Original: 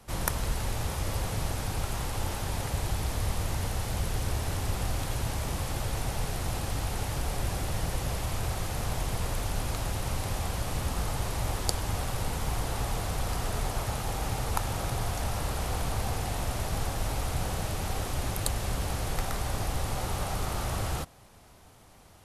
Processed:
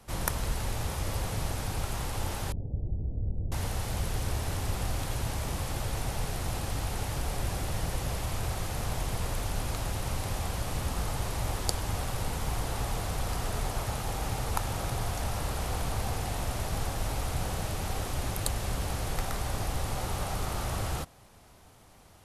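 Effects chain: 2.52–3.52 Gaussian blur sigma 20 samples; gain -1 dB

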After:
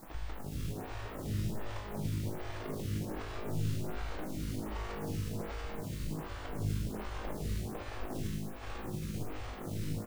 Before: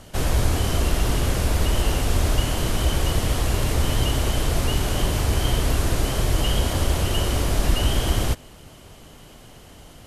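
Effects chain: tape start at the beginning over 1.01 s; tilt shelf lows +6 dB, about 1400 Hz; compressor 5:1, threshold -30 dBFS, peak gain reduction 20 dB; Schmitt trigger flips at -37.5 dBFS; whisperiser; grains 0.105 s, grains 20/s; added noise pink -48 dBFS; resonator 52 Hz, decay 1.5 s, harmonics all, mix 90%; on a send: echo 0.511 s -7.5 dB; on the sum: photocell phaser 1.3 Hz; gain +11 dB

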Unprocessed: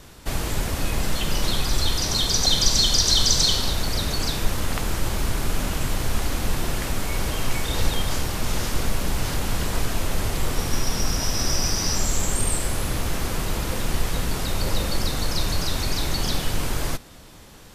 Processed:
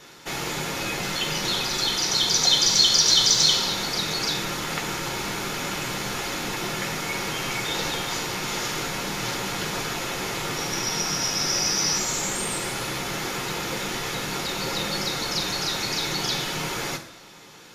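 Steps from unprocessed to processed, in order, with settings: low shelf 89 Hz -11.5 dB; in parallel at -5.5 dB: soft clip -17 dBFS, distortion -16 dB; on the sum: reverb RT60 1.0 s, pre-delay 3 ms, DRR 3 dB; gain -8 dB

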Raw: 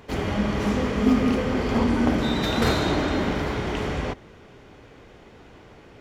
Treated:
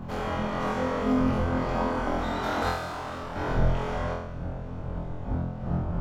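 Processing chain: wind noise 140 Hz -22 dBFS; compressor 1.5:1, threshold -29 dBFS, peak gain reduction 8.5 dB; 2.69–3.36 overloaded stage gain 33.5 dB; band shelf 910 Hz +9 dB; on a send: flutter echo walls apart 4 m, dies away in 0.73 s; on the sum: gain -8.5 dB

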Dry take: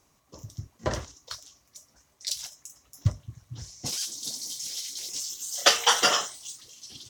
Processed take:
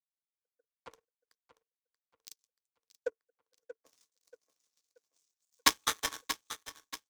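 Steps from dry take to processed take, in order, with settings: frequency shift +390 Hz; in parallel at -0.5 dB: compressor, threshold -33 dBFS, peak gain reduction 18 dB; on the sum: power-law curve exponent 3; small resonant body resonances 300/440/1100 Hz, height 9 dB, ringing for 50 ms; on a send: feedback echo 0.632 s, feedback 46%, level -10.5 dB; on the sum: three-band expander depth 40%; gain -3.5 dB

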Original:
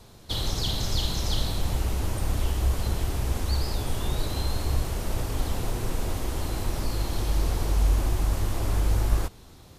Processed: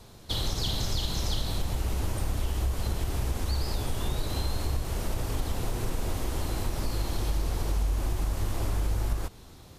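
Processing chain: compressor 4:1, threshold -24 dBFS, peak gain reduction 8.5 dB

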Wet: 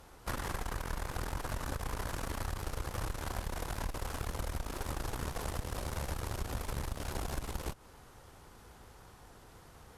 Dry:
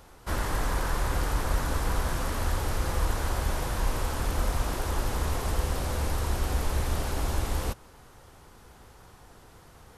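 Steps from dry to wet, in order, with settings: added harmonics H 4 -8 dB, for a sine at -14 dBFS; compressor 6:1, threshold -30 dBFS, peak gain reduction 12.5 dB; gain -3 dB

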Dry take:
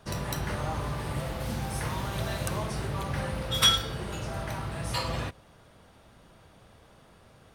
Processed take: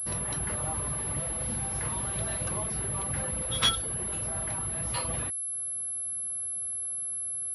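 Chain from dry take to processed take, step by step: reverb removal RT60 0.53 s; added harmonics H 4 -14 dB, 6 -19 dB, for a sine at -8 dBFS; pulse-width modulation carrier 11000 Hz; gain -2.5 dB

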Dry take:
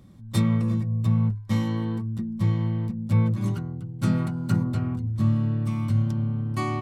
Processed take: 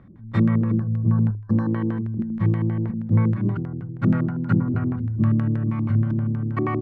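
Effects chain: spectral gain 0.76–1.68, 1800–4000 Hz -27 dB; LFO low-pass square 6.3 Hz 350–1700 Hz; gain +1.5 dB

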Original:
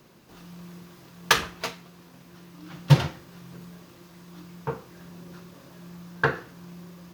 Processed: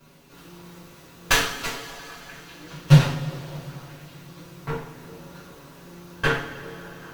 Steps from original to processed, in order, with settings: minimum comb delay 7.1 ms; delay with a stepping band-pass 0.196 s, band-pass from 260 Hz, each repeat 0.7 oct, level -11 dB; two-slope reverb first 0.43 s, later 3.9 s, from -19 dB, DRR -5.5 dB; gain -2.5 dB

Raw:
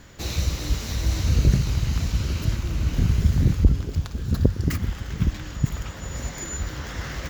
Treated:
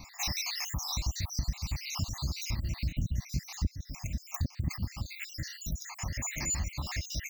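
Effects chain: random spectral dropouts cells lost 68%; high shelf 3000 Hz +8.5 dB; fixed phaser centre 2200 Hz, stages 8; compressor 3:1, threshold -32 dBFS, peak gain reduction 16 dB; low shelf 100 Hz -4 dB; gain +3.5 dB

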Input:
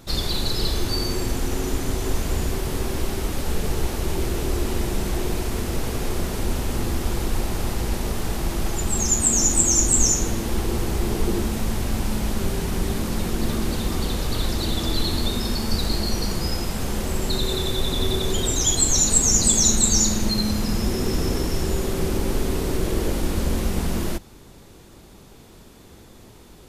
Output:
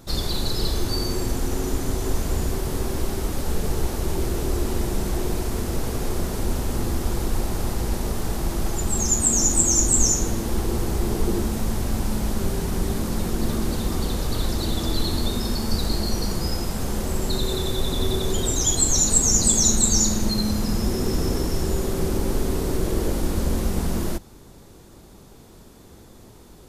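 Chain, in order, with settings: bell 2600 Hz -5 dB 1.3 oct

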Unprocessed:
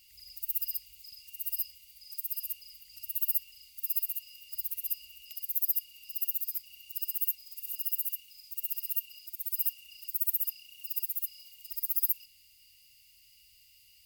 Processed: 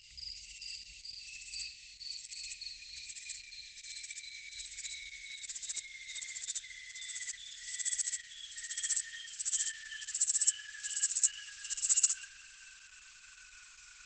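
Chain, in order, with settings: gliding pitch shift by -11.5 st starting unshifted; gain +8 dB; Opus 10 kbps 48000 Hz

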